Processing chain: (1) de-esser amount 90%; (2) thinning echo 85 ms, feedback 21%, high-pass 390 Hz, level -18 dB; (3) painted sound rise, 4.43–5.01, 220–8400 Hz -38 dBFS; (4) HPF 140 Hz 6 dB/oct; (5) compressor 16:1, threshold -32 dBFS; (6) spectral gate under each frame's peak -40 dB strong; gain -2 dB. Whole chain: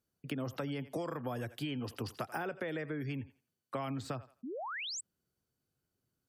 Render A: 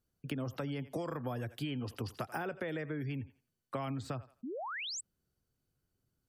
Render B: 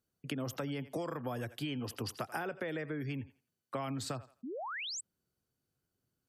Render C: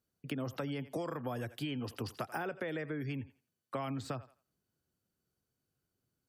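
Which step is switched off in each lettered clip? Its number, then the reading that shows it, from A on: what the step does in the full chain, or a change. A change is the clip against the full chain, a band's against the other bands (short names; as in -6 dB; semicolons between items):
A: 4, 125 Hz band +2.5 dB; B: 1, 8 kHz band +2.0 dB; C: 3, 8 kHz band -8.0 dB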